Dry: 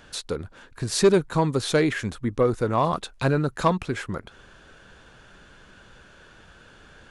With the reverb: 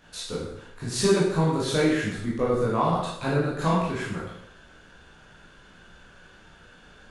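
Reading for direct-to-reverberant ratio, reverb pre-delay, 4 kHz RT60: -6.5 dB, 12 ms, 0.70 s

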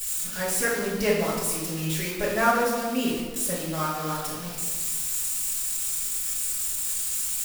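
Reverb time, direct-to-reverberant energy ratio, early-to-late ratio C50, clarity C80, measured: 1.5 s, -10.0 dB, 1.0 dB, 4.0 dB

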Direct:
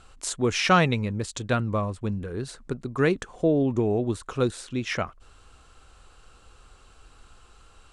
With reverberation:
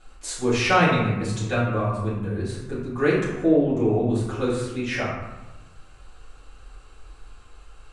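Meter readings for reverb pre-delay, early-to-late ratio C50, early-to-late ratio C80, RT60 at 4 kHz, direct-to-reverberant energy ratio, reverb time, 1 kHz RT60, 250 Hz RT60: 3 ms, 1.0 dB, 4.0 dB, 0.65 s, -12.0 dB, 1.1 s, 1.1 s, 1.4 s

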